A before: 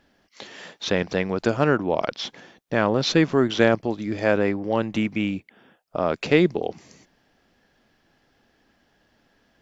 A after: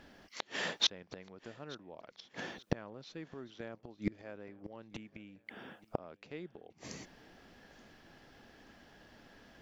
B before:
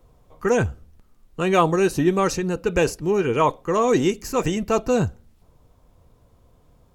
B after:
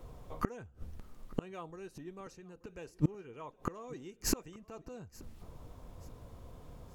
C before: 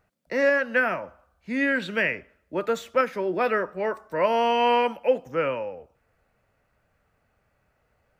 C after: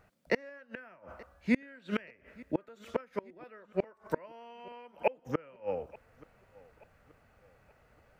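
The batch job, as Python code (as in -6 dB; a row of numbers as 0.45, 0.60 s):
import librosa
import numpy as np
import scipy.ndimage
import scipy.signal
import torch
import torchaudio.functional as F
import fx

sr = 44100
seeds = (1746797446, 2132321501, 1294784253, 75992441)

p1 = fx.high_shelf(x, sr, hz=5900.0, db=-3.0)
p2 = fx.gate_flip(p1, sr, shuts_db=-21.0, range_db=-33)
p3 = p2 + fx.echo_feedback(p2, sr, ms=879, feedback_pct=41, wet_db=-23.0, dry=0)
y = F.gain(torch.from_numpy(p3), 5.0).numpy()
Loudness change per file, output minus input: -18.5, -20.0, -12.0 LU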